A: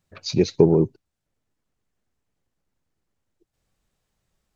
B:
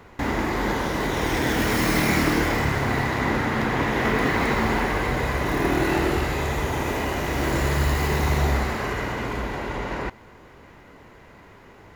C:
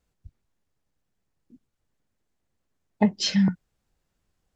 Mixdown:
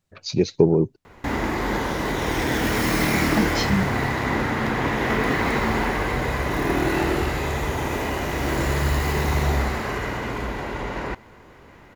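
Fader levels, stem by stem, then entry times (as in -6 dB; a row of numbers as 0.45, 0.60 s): -1.0, 0.0, -3.0 dB; 0.00, 1.05, 0.35 s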